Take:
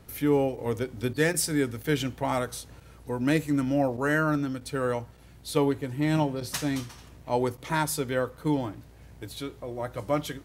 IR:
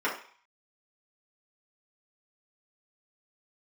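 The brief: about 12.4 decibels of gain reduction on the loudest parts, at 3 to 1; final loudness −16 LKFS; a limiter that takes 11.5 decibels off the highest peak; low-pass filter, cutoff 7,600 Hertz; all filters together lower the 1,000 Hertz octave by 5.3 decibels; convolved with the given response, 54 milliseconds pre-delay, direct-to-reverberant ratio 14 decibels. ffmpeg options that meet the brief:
-filter_complex "[0:a]lowpass=7600,equalizer=frequency=1000:width_type=o:gain=-7,acompressor=threshold=-37dB:ratio=3,alimiter=level_in=10dB:limit=-24dB:level=0:latency=1,volume=-10dB,asplit=2[link_01][link_02];[1:a]atrim=start_sample=2205,adelay=54[link_03];[link_02][link_03]afir=irnorm=-1:irlink=0,volume=-25.5dB[link_04];[link_01][link_04]amix=inputs=2:normalize=0,volume=28dB"

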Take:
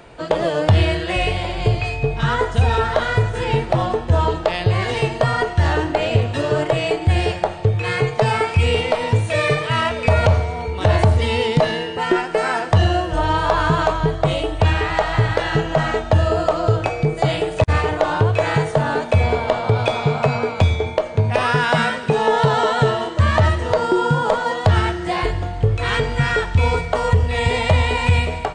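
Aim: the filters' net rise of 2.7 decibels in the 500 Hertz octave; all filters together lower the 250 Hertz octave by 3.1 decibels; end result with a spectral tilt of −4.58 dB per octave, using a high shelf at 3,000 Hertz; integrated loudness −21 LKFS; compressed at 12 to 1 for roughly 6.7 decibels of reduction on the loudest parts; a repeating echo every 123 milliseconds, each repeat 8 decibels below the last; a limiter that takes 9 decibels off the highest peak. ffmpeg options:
ffmpeg -i in.wav -af "equalizer=frequency=250:width_type=o:gain=-8,equalizer=frequency=500:width_type=o:gain=5.5,highshelf=frequency=3000:gain=-6.5,acompressor=threshold=-18dB:ratio=12,alimiter=limit=-14.5dB:level=0:latency=1,aecho=1:1:123|246|369|492|615:0.398|0.159|0.0637|0.0255|0.0102,volume=3dB" out.wav

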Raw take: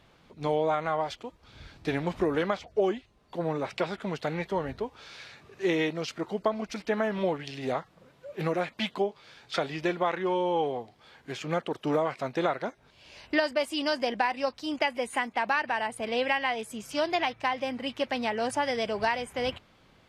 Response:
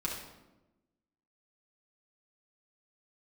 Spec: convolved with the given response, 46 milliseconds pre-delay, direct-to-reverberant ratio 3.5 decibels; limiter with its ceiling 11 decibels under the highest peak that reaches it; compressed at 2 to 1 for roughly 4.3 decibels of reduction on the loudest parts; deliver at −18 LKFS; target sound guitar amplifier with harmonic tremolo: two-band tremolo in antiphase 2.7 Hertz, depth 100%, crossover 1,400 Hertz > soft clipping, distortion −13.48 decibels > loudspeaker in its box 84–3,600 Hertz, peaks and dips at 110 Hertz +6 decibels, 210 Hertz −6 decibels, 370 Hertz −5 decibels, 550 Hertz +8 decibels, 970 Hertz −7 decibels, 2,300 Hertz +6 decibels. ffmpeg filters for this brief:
-filter_complex "[0:a]acompressor=threshold=-30dB:ratio=2,alimiter=level_in=2.5dB:limit=-24dB:level=0:latency=1,volume=-2.5dB,asplit=2[link_01][link_02];[1:a]atrim=start_sample=2205,adelay=46[link_03];[link_02][link_03]afir=irnorm=-1:irlink=0,volume=-7.5dB[link_04];[link_01][link_04]amix=inputs=2:normalize=0,acrossover=split=1400[link_05][link_06];[link_05]aeval=exprs='val(0)*(1-1/2+1/2*cos(2*PI*2.7*n/s))':channel_layout=same[link_07];[link_06]aeval=exprs='val(0)*(1-1/2-1/2*cos(2*PI*2.7*n/s))':channel_layout=same[link_08];[link_07][link_08]amix=inputs=2:normalize=0,asoftclip=threshold=-33dB,highpass=84,equalizer=frequency=110:width_type=q:width=4:gain=6,equalizer=frequency=210:width_type=q:width=4:gain=-6,equalizer=frequency=370:width_type=q:width=4:gain=-5,equalizer=frequency=550:width_type=q:width=4:gain=8,equalizer=frequency=970:width_type=q:width=4:gain=-7,equalizer=frequency=2300:width_type=q:width=4:gain=6,lowpass=frequency=3600:width=0.5412,lowpass=frequency=3600:width=1.3066,volume=23.5dB"

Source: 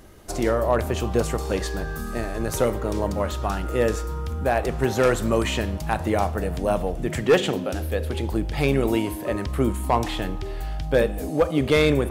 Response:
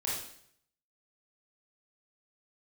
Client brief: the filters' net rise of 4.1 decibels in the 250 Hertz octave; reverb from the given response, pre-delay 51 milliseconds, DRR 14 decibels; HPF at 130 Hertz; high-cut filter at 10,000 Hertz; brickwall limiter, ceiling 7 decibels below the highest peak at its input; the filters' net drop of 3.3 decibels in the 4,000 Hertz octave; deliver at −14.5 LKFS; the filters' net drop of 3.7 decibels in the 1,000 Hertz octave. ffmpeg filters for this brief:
-filter_complex "[0:a]highpass=130,lowpass=10000,equalizer=frequency=250:width_type=o:gain=6,equalizer=frequency=1000:width_type=o:gain=-5.5,equalizer=frequency=4000:width_type=o:gain=-4,alimiter=limit=-14dB:level=0:latency=1,asplit=2[link_01][link_02];[1:a]atrim=start_sample=2205,adelay=51[link_03];[link_02][link_03]afir=irnorm=-1:irlink=0,volume=-19dB[link_04];[link_01][link_04]amix=inputs=2:normalize=0,volume=11.5dB"

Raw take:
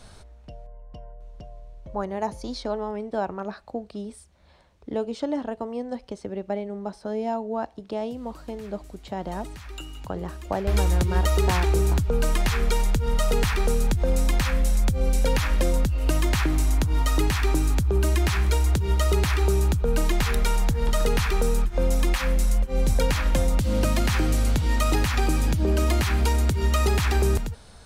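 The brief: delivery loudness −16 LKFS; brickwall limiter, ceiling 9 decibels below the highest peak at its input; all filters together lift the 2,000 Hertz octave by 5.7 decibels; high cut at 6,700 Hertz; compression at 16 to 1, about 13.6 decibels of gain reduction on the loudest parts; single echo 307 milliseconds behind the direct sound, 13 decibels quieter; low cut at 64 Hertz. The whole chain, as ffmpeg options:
ffmpeg -i in.wav -af "highpass=64,lowpass=6700,equalizer=frequency=2000:width_type=o:gain=7,acompressor=threshold=-32dB:ratio=16,alimiter=level_in=3.5dB:limit=-24dB:level=0:latency=1,volume=-3.5dB,aecho=1:1:307:0.224,volume=22dB" out.wav

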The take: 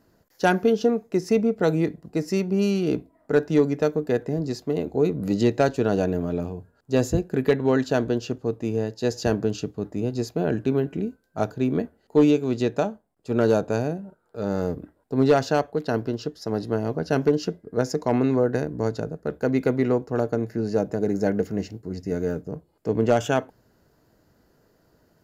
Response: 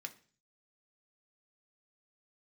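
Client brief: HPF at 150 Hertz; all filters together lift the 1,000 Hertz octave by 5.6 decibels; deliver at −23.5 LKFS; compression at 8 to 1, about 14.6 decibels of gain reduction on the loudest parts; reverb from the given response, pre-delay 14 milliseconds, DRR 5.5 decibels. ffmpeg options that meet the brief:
-filter_complex "[0:a]highpass=150,equalizer=frequency=1000:width_type=o:gain=8.5,acompressor=threshold=-27dB:ratio=8,asplit=2[link_01][link_02];[1:a]atrim=start_sample=2205,adelay=14[link_03];[link_02][link_03]afir=irnorm=-1:irlink=0,volume=-2.5dB[link_04];[link_01][link_04]amix=inputs=2:normalize=0,volume=9dB"

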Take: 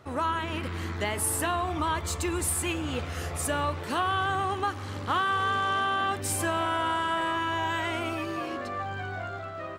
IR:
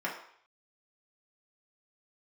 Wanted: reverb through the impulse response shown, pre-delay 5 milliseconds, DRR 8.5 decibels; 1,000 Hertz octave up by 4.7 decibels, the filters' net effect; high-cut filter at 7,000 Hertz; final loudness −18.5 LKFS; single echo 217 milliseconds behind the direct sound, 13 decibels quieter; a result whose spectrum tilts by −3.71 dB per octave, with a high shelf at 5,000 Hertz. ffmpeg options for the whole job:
-filter_complex "[0:a]lowpass=7000,equalizer=frequency=1000:width_type=o:gain=5.5,highshelf=frequency=5000:gain=3.5,aecho=1:1:217:0.224,asplit=2[link_01][link_02];[1:a]atrim=start_sample=2205,adelay=5[link_03];[link_02][link_03]afir=irnorm=-1:irlink=0,volume=-15.5dB[link_04];[link_01][link_04]amix=inputs=2:normalize=0,volume=7dB"

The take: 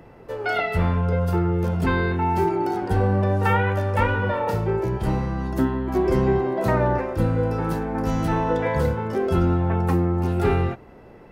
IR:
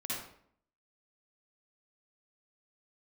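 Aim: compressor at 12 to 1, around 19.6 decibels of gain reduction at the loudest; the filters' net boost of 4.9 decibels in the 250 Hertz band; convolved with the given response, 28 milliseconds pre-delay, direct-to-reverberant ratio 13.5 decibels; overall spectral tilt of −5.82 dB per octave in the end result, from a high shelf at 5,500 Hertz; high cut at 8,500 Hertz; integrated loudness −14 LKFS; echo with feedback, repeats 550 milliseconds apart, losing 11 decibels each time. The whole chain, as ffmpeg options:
-filter_complex "[0:a]lowpass=8500,equalizer=frequency=250:width_type=o:gain=7,highshelf=frequency=5500:gain=8,acompressor=threshold=-32dB:ratio=12,aecho=1:1:550|1100|1650:0.282|0.0789|0.0221,asplit=2[link_01][link_02];[1:a]atrim=start_sample=2205,adelay=28[link_03];[link_02][link_03]afir=irnorm=-1:irlink=0,volume=-16.5dB[link_04];[link_01][link_04]amix=inputs=2:normalize=0,volume=21dB"

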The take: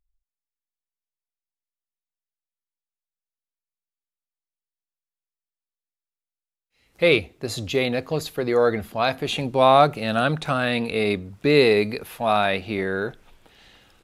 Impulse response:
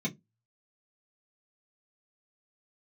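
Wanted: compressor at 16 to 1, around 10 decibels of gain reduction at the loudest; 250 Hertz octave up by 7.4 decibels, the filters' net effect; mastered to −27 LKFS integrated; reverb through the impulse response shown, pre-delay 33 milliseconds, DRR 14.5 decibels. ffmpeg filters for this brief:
-filter_complex "[0:a]equalizer=frequency=250:width_type=o:gain=9,acompressor=threshold=-18dB:ratio=16,asplit=2[link_01][link_02];[1:a]atrim=start_sample=2205,adelay=33[link_03];[link_02][link_03]afir=irnorm=-1:irlink=0,volume=-18.5dB[link_04];[link_01][link_04]amix=inputs=2:normalize=0,volume=-3.5dB"

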